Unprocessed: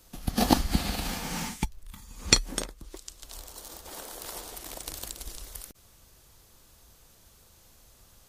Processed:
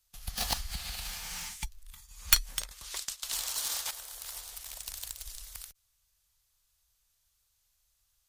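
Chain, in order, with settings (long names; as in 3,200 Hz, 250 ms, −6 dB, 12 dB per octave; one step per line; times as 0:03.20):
stylus tracing distortion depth 0.17 ms
noise gate −47 dBFS, range −14 dB
guitar amp tone stack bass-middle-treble 10-0-10
0:00.53–0:01.52: downward compressor 2.5 to 1, threshold −35 dBFS, peak gain reduction 5.5 dB
0:02.71–0:03.91: mid-hump overdrive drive 24 dB, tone 7,500 Hz, clips at −18.5 dBFS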